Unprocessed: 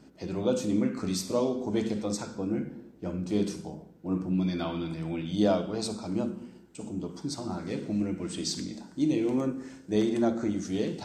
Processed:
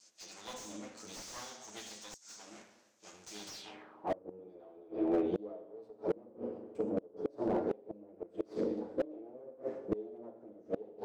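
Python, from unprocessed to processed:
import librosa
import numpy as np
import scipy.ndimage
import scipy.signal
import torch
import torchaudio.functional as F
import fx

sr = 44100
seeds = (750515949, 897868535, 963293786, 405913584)

y = fx.lower_of_two(x, sr, delay_ms=9.3)
y = fx.tilt_shelf(y, sr, db=6.0, hz=1100.0, at=(0.53, 1.28))
y = fx.comb(y, sr, ms=7.1, depth=0.48, at=(5.65, 6.07))
y = fx.rev_spring(y, sr, rt60_s=1.1, pass_ms=(42,), chirp_ms=35, drr_db=8.5)
y = fx.filter_sweep_bandpass(y, sr, from_hz=6500.0, to_hz=450.0, start_s=3.46, end_s=4.24, q=3.2)
y = fx.dynamic_eq(y, sr, hz=680.0, q=1.5, threshold_db=-48.0, ratio=4.0, max_db=4)
y = fx.gate_flip(y, sr, shuts_db=-32.0, range_db=-28)
y = fx.slew_limit(y, sr, full_power_hz=5.6)
y = F.gain(torch.from_numpy(y), 12.5).numpy()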